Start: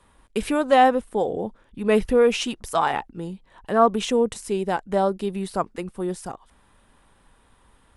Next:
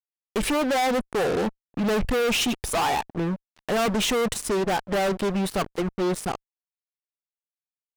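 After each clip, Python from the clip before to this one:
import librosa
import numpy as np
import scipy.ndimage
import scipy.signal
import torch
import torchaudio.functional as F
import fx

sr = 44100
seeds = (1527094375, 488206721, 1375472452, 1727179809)

y = fx.spec_gate(x, sr, threshold_db=-30, keep='strong')
y = fx.fuzz(y, sr, gain_db=34.0, gate_db=-40.0)
y = F.gain(torch.from_numpy(y), -8.0).numpy()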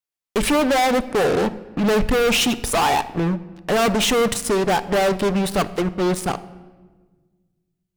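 y = fx.room_shoebox(x, sr, seeds[0], volume_m3=1200.0, walls='mixed', distance_m=0.35)
y = F.gain(torch.from_numpy(y), 5.0).numpy()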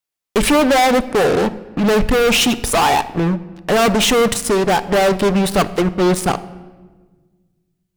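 y = fx.rider(x, sr, range_db=3, speed_s=2.0)
y = F.gain(torch.from_numpy(y), 4.0).numpy()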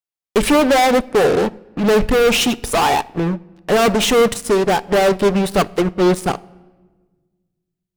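y = fx.peak_eq(x, sr, hz=420.0, db=2.5, octaves=0.77)
y = fx.upward_expand(y, sr, threshold_db=-30.0, expansion=1.5)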